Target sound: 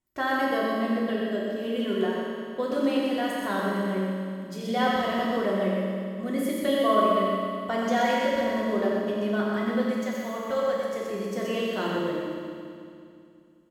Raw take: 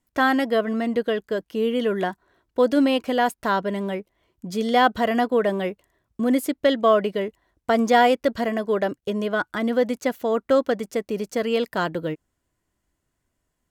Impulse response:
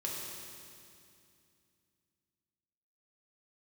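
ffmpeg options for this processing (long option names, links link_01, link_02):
-filter_complex "[0:a]asettb=1/sr,asplit=3[link_01][link_02][link_03];[link_01]atrim=end=9.874[link_04];[link_02]atrim=start=9.87:end=10.97,asetpts=PTS-STARTPTS,afade=type=in:duration=0.004:curve=qsin,afade=type=out:start_time=1.096:duration=0.004:curve=qsin,equalizer=frequency=310:width=1.2:gain=-11.5[link_05];[link_03]atrim=start=10.966[link_06];[link_04][link_05]acrossfade=duration=0.004:curve1=hsin:curve2=qsin[link_07];[link_07][link_06]acrossfade=duration=0.004:curve1=qsin:curve2=hsin,aecho=1:1:90.38|125.4:0.355|0.562[link_08];[1:a]atrim=start_sample=2205[link_09];[link_08][link_09]afir=irnorm=-1:irlink=0,volume=-7.5dB"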